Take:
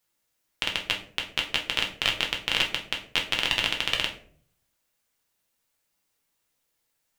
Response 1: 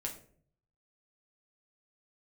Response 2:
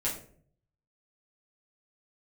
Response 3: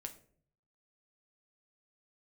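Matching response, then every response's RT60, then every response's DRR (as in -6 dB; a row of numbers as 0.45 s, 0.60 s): 1; 0.55 s, 0.55 s, 0.55 s; 0.0 dB, -7.0 dB, 5.0 dB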